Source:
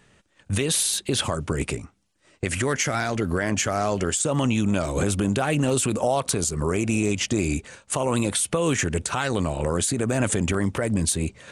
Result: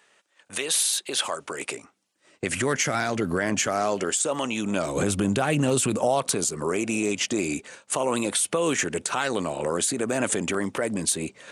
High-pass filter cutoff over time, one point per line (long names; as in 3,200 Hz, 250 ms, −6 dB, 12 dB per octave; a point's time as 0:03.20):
0:01.59 550 Hz
0:02.60 140 Hz
0:03.46 140 Hz
0:04.42 420 Hz
0:05.13 110 Hz
0:05.86 110 Hz
0:06.61 250 Hz